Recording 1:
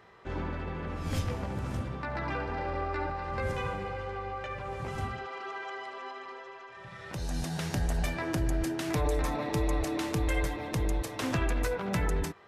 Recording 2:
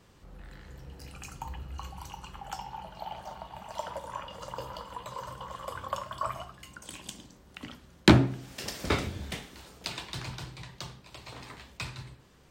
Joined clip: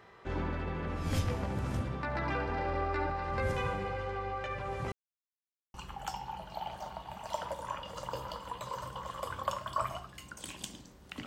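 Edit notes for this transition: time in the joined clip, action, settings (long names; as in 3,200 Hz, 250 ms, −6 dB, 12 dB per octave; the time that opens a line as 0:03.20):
recording 1
0:04.92–0:05.74: silence
0:05.74: continue with recording 2 from 0:02.19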